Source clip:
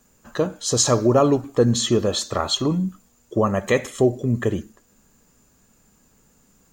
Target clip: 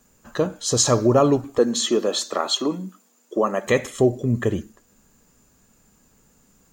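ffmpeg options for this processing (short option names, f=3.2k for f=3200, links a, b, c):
-filter_complex "[0:a]asettb=1/sr,asplit=3[a][b][c];[a]atrim=end=1.584[d];[b]atrim=start=1.58:end=3.67,asetpts=PTS-STARTPTS,afade=t=in:d=0.004:c=qsin,afade=t=out:st=2.086:d=0.004:c=qsin,highpass=f=240:w=0.5412,highpass=f=240:w=1.3066[e];[c]atrim=start=3.666[f];[d][e]acrossfade=d=0.004:c1=hsin:c2=qsin[g];[g][f]acrossfade=d=0.004:c1=qsin:c2=hsin"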